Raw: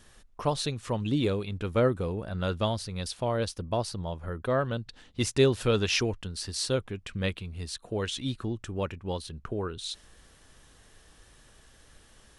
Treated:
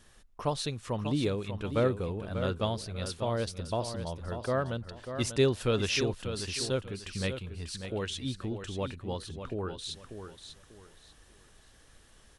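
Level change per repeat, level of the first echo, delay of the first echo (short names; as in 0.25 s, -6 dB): -11.5 dB, -9.0 dB, 0.592 s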